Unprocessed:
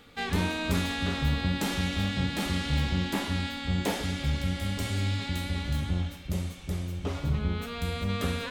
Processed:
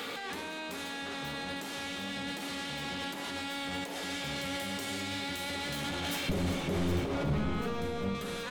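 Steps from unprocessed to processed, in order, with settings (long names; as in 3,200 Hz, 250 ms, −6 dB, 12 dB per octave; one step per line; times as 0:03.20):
in parallel at +1 dB: brickwall limiter −21.5 dBFS, peak gain reduction 7.5 dB
on the sum: high-pass filter 300 Hz 12 dB per octave
mains-hum notches 60/120/180/240/300/360/420 Hz
compressor whose output falls as the input rises −39 dBFS, ratio −1
soft clipping −36 dBFS, distortion −9 dB
0:06.29–0:08.15: spectral tilt −3 dB per octave
single-tap delay 855 ms −16.5 dB
on a send at −11.5 dB: convolution reverb RT60 2.9 s, pre-delay 17 ms
on the sum: level +4.5 dB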